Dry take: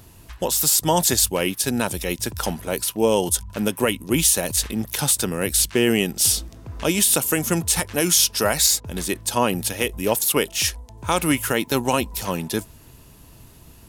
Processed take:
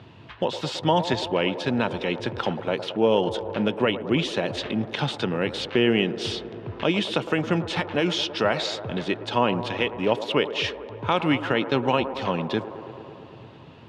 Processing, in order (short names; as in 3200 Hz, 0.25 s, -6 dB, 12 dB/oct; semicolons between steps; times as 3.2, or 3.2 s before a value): elliptic band-pass 110–3400 Hz, stop band 80 dB; in parallel at +2 dB: compressor, threshold -32 dBFS, peak gain reduction 17 dB; on the sum: band-limited delay 0.11 s, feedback 80%, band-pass 620 Hz, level -11 dB; gain -3 dB